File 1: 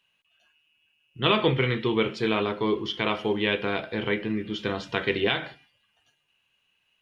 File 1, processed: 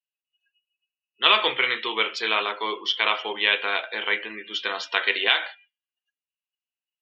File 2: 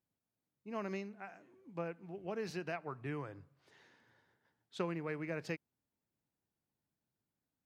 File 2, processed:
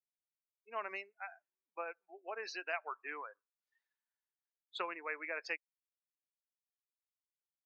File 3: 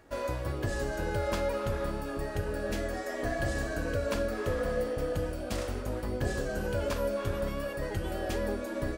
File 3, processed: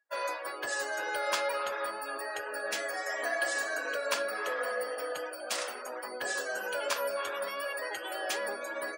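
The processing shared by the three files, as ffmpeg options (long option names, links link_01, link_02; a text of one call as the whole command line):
ffmpeg -i in.wav -af "highpass=870,afftdn=noise_reduction=35:noise_floor=-50,highshelf=frequency=5100:gain=6.5,volume=6dB" out.wav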